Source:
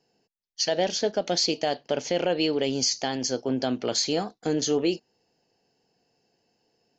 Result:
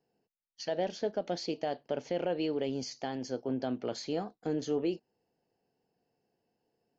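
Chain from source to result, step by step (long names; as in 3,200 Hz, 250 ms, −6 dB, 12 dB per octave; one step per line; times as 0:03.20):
low-pass filter 1,400 Hz 6 dB per octave
level −6.5 dB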